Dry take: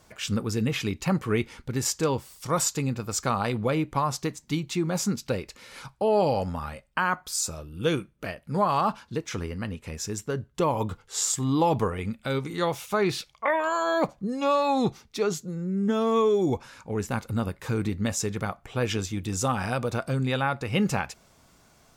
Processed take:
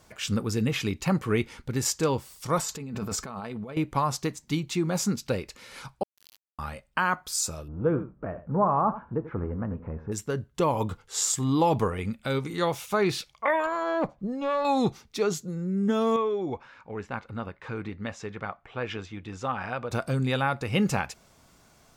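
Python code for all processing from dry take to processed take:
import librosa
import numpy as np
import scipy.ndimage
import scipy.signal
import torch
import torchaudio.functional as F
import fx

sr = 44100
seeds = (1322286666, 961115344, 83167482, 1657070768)

y = fx.chain(x, sr, fx.high_shelf(hz=2700.0, db=-7.0),
    fx.comb(ms=4.6, depth=0.41),
    fx.over_compress(threshold_db=-35.0, ratio=-1.0), at=(2.58, 3.77))
y = fx.chain(y, sr, fx.cheby_ripple_highpass(hz=3000.0, ripple_db=9),
    fx.sample_gate(floor_db=-39.5), at=(6.03, 6.59))
y = fx.chain(y, sr, fx.law_mismatch(coded='mu'),
    fx.lowpass(hz=1300.0, slope=24),
    fx.echo_single(ms=86, db=-14.0), at=(7.68, 10.12))
y = fx.chain(y, sr, fx.block_float(bits=7),
    fx.lowpass(hz=1500.0, slope=6),
    fx.tube_stage(drive_db=17.0, bias=0.4), at=(13.66, 14.65))
y = fx.chain(y, sr, fx.lowpass(hz=2400.0, slope=12),
    fx.low_shelf(hz=490.0, db=-10.0), at=(16.16, 19.91))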